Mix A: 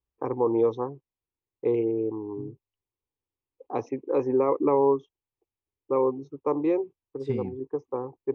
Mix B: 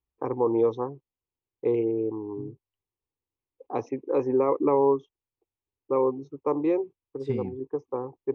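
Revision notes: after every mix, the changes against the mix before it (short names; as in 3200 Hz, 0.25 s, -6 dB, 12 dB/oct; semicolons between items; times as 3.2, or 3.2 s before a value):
none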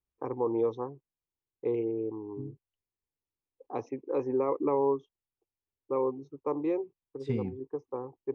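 first voice -5.5 dB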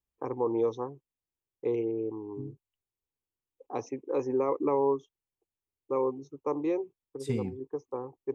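master: remove air absorption 210 m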